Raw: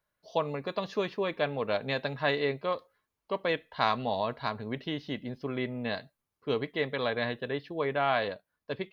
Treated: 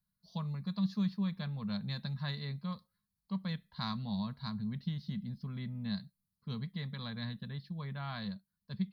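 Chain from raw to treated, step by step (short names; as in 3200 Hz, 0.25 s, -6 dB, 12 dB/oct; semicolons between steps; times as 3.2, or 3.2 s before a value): EQ curve 130 Hz 0 dB, 200 Hz +10 dB, 300 Hz -26 dB, 660 Hz -24 dB, 1000 Hz -14 dB, 1900 Hz -16 dB, 2800 Hz -20 dB, 4300 Hz -1 dB, 6400 Hz -11 dB, 10000 Hz -2 dB; gain +1 dB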